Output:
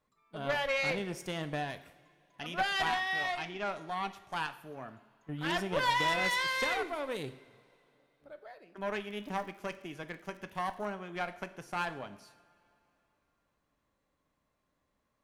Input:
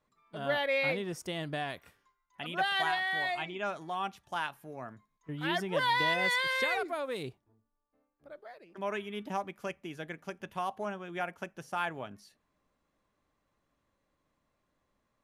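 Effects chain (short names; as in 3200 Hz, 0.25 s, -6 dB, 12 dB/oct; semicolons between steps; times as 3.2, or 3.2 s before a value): added harmonics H 4 -14 dB, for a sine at -18 dBFS; two-slope reverb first 0.59 s, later 3.1 s, from -18 dB, DRR 10 dB; 8.9–10.91 crackle 48/s -44 dBFS; gain -1.5 dB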